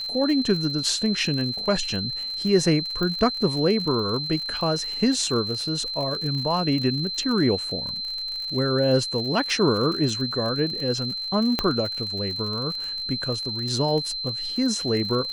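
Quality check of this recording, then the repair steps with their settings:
crackle 54/s -30 dBFS
tone 4100 Hz -28 dBFS
3.03 pop -16 dBFS
11.59 pop -8 dBFS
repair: de-click; notch 4100 Hz, Q 30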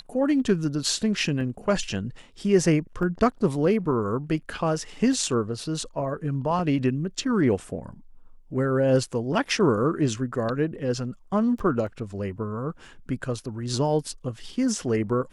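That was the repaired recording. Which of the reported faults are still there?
3.03 pop
11.59 pop

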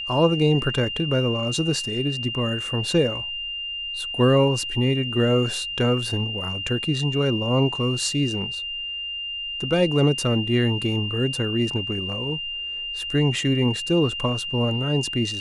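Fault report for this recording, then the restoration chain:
tone 2800 Hz -28 dBFS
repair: notch 2800 Hz, Q 30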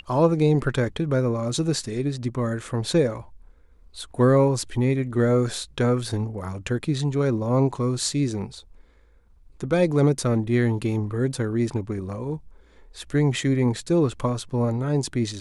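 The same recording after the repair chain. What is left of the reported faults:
none

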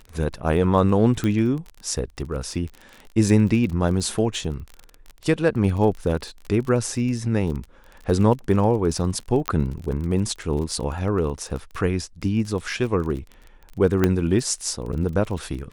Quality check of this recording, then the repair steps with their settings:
crackle 30/s -30 dBFS
1.24 pop -12 dBFS
9.48 pop -5 dBFS
14.04 pop -6 dBFS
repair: de-click

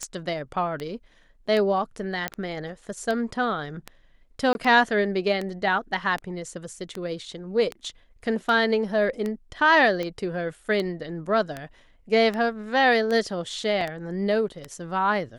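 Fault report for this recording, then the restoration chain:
tick 78 rpm -17 dBFS
2.28 pop -11 dBFS
4.53–4.55 gap 21 ms
13.81 gap 2.8 ms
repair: de-click; interpolate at 4.53, 21 ms; interpolate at 13.81, 2.8 ms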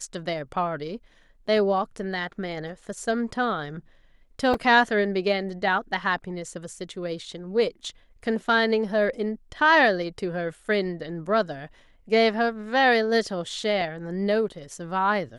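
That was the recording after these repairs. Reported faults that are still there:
none

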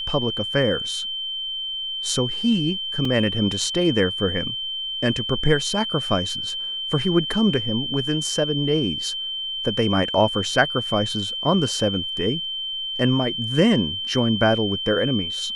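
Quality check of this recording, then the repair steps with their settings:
tone 3100 Hz -26 dBFS
3.05 gap 2.6 ms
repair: notch 3100 Hz, Q 30; interpolate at 3.05, 2.6 ms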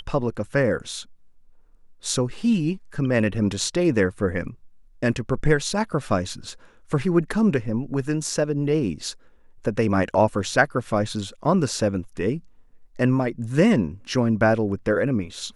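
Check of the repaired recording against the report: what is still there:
none

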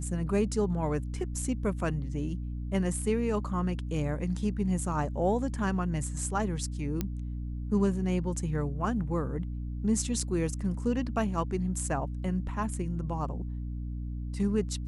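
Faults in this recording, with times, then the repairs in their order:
hum 60 Hz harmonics 5 -35 dBFS
7.01 pop -16 dBFS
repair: de-click; de-hum 60 Hz, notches 5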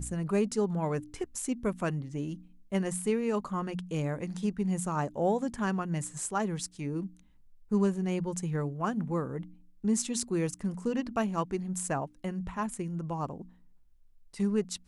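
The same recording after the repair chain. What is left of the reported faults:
none

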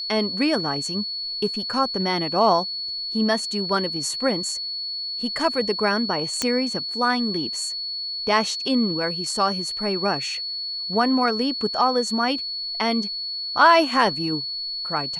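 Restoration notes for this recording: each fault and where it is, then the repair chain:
tone 4400 Hz -27 dBFS
6.42 pop -7 dBFS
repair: de-click; notch 4400 Hz, Q 30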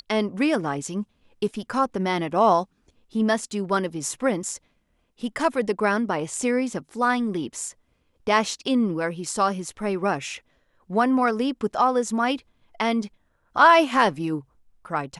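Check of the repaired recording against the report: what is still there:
none

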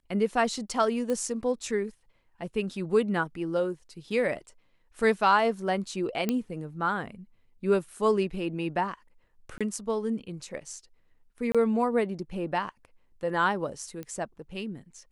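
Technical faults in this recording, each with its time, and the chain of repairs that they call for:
1.1 pop -19 dBFS
6.29 pop -13 dBFS
9.58–9.61 gap 26 ms
11.52–11.55 gap 26 ms
14.03 pop -24 dBFS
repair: de-click; interpolate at 9.58, 26 ms; interpolate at 11.52, 26 ms

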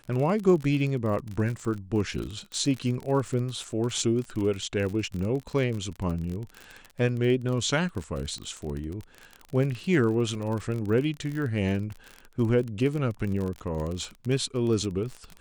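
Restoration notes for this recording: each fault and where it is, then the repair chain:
crackle 38/s -31 dBFS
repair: de-click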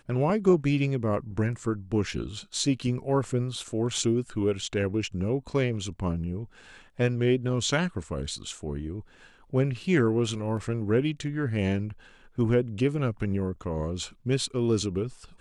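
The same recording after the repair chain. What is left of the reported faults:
none

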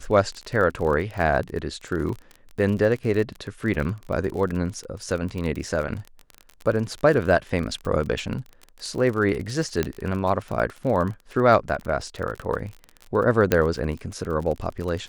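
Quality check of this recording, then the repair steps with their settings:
crackle 35/s -29 dBFS
2.09 gap 2.2 ms
9.83 pop -10 dBFS
13.52 pop -6 dBFS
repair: de-click; interpolate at 2.09, 2.2 ms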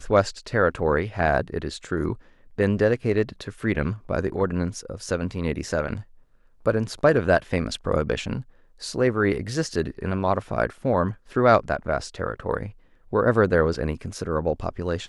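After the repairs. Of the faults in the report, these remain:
none

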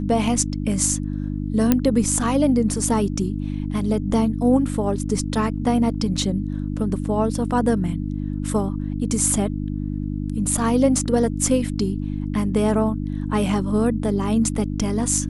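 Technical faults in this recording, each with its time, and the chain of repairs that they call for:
hum 50 Hz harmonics 6 -26 dBFS
1.72 pop -3 dBFS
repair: de-click; de-hum 50 Hz, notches 6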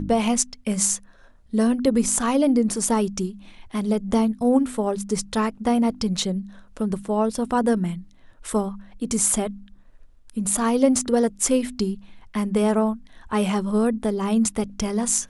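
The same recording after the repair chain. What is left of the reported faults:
none

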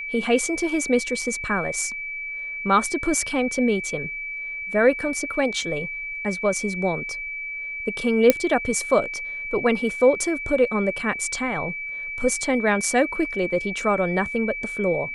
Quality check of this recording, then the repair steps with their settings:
tone 2300 Hz -29 dBFS
8.3 pop -1 dBFS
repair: de-click; notch 2300 Hz, Q 30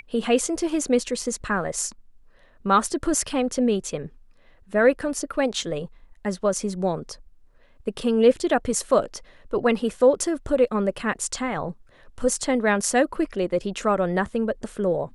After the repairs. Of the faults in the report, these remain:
none

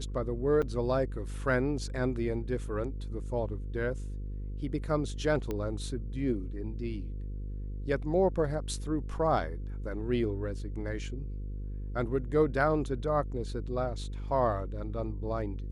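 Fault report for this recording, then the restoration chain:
buzz 50 Hz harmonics 10 -37 dBFS
0.62–0.63 gap 5.7 ms
5.51 pop -21 dBFS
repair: de-click; de-hum 50 Hz, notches 10; interpolate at 0.62, 5.7 ms

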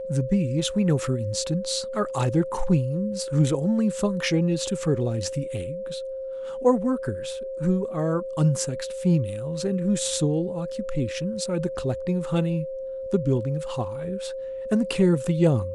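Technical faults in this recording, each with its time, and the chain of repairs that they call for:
tone 530 Hz -30 dBFS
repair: notch 530 Hz, Q 30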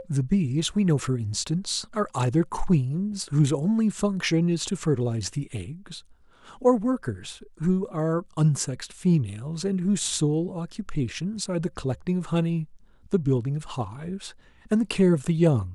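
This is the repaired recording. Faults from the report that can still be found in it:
none

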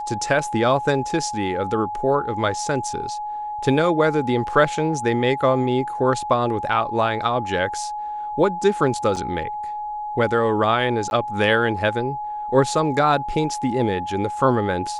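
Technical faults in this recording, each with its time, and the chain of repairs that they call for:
tone 840 Hz -26 dBFS
9.16–9.17 gap 5.1 ms
11.1–11.11 gap 11 ms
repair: notch 840 Hz, Q 30; interpolate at 9.16, 5.1 ms; interpolate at 11.1, 11 ms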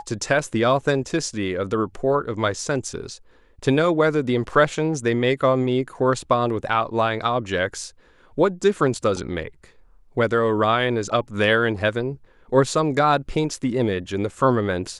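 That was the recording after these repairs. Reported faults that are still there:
none

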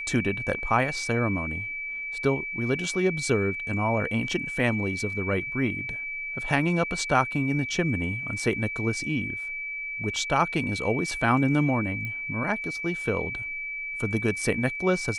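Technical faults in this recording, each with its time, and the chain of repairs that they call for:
tone 2300 Hz -31 dBFS
12.05 pop -22 dBFS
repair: de-click; notch 2300 Hz, Q 30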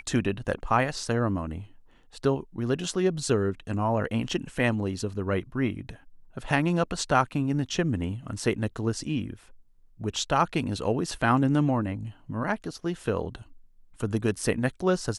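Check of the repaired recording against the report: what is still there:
none

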